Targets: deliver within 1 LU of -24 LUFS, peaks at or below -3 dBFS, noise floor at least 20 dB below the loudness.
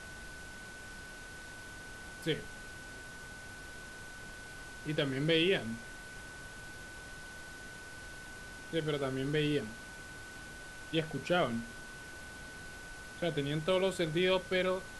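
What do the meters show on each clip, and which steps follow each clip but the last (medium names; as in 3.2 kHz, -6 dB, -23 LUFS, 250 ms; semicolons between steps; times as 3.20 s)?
steady tone 1.5 kHz; tone level -48 dBFS; noise floor -48 dBFS; noise floor target -57 dBFS; loudness -37.0 LUFS; peak level -16.0 dBFS; loudness target -24.0 LUFS
-> band-stop 1.5 kHz, Q 30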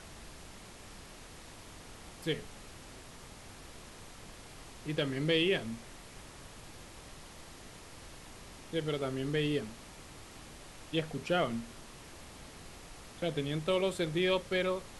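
steady tone not found; noise floor -52 dBFS; noise floor target -54 dBFS
-> noise print and reduce 6 dB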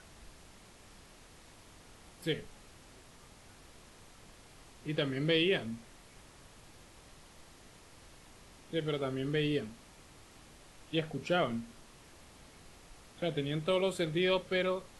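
noise floor -58 dBFS; loudness -33.5 LUFS; peak level -16.0 dBFS; loudness target -24.0 LUFS
-> trim +9.5 dB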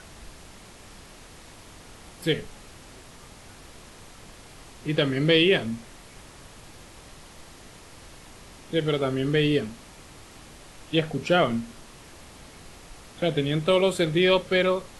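loudness -24.0 LUFS; peak level -6.5 dBFS; noise floor -48 dBFS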